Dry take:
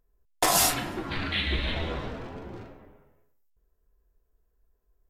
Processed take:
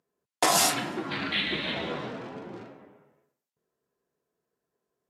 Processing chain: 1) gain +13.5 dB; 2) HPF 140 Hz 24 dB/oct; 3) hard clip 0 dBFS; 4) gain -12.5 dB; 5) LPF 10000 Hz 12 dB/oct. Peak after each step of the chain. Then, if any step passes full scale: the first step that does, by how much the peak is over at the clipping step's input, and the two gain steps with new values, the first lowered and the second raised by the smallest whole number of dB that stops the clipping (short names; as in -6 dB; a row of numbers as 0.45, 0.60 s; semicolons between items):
+5.0, +5.0, 0.0, -12.5, -11.5 dBFS; step 1, 5.0 dB; step 1 +8.5 dB, step 4 -7.5 dB